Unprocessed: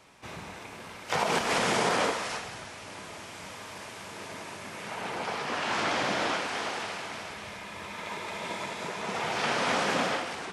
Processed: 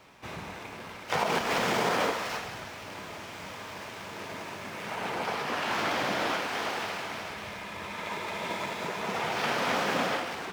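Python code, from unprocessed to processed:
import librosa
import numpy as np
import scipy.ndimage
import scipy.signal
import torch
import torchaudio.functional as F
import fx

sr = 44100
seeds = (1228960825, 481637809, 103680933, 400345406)

p1 = scipy.ndimage.median_filter(x, 5, mode='constant')
p2 = fx.rider(p1, sr, range_db=3, speed_s=0.5)
p3 = p1 + (p2 * librosa.db_to_amplitude(-2.0))
y = p3 * librosa.db_to_amplitude(-4.5)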